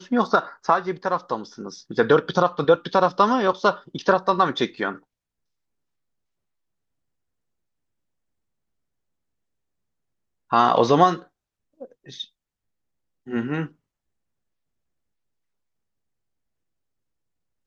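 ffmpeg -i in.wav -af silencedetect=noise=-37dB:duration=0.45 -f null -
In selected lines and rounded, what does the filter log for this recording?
silence_start: 4.96
silence_end: 10.51 | silence_duration: 5.55
silence_start: 11.22
silence_end: 11.81 | silence_duration: 0.59
silence_start: 12.24
silence_end: 13.27 | silence_duration: 1.03
silence_start: 13.67
silence_end: 17.67 | silence_duration: 4.00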